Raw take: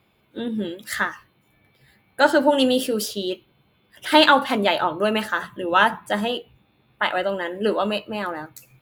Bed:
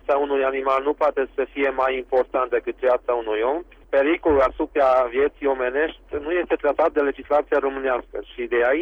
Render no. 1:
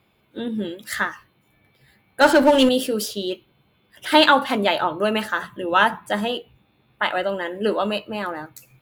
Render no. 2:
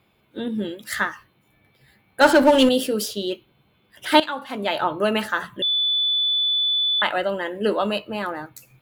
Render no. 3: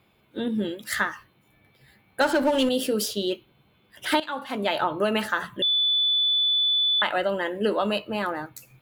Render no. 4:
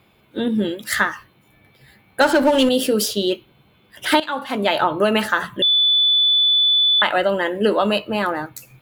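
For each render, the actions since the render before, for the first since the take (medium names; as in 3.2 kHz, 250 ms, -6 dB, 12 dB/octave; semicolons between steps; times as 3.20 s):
2.21–2.69 s: power-law waveshaper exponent 0.7
4.20–4.87 s: fade in quadratic, from -15.5 dB; 5.62–7.02 s: bleep 3.48 kHz -18 dBFS
compression 6:1, threshold -19 dBFS, peak gain reduction 10 dB
trim +6.5 dB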